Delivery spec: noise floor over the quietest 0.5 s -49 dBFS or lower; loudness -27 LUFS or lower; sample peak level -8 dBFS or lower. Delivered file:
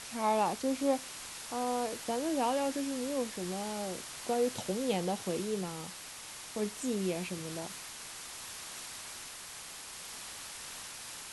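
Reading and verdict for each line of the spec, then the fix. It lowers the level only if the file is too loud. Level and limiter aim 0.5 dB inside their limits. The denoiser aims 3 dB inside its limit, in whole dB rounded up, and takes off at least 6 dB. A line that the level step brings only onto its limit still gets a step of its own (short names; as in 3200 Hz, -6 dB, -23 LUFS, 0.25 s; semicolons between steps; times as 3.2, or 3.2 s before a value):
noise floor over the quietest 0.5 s -46 dBFS: fail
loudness -35.5 LUFS: OK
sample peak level -17.0 dBFS: OK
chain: denoiser 6 dB, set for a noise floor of -46 dBFS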